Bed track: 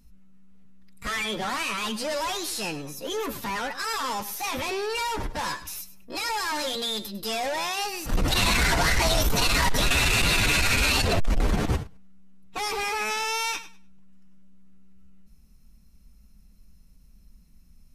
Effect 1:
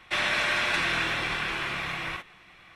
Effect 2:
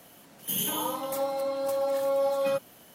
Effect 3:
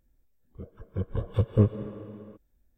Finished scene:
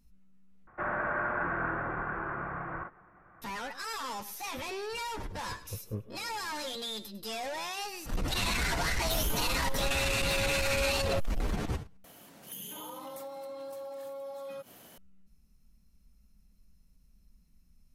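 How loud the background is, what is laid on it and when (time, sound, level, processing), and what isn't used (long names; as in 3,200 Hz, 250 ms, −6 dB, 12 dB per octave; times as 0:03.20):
bed track −8.5 dB
0:00.67: overwrite with 1 −0.5 dB + elliptic low-pass filter 1,500 Hz, stop band 80 dB
0:04.34: mix in 3 −17 dB
0:08.62: mix in 2 −7.5 dB
0:12.04: overwrite with 2 −0.5 dB + downward compressor 8 to 1, threshold −39 dBFS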